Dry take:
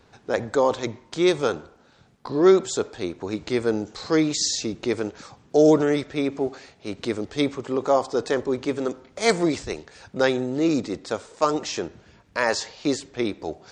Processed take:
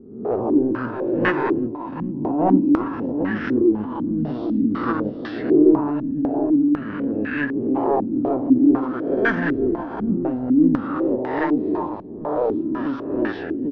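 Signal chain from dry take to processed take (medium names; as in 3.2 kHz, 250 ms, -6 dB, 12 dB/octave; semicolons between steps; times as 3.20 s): reverse spectral sustain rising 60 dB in 0.88 s; saturation -15.5 dBFS, distortion -12 dB; on a send: multi-tap echo 47/360/363/797 ms -10/-11/-15/-5 dB; on the sum: formant shift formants -5 st; step-sequenced low-pass 4 Hz 220–1700 Hz; trim -2 dB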